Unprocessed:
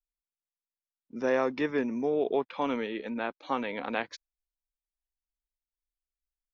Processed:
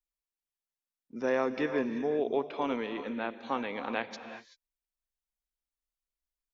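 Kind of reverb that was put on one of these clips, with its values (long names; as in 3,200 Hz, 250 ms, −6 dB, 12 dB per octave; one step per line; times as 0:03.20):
reverb whose tail is shaped and stops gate 410 ms rising, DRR 10 dB
level −2 dB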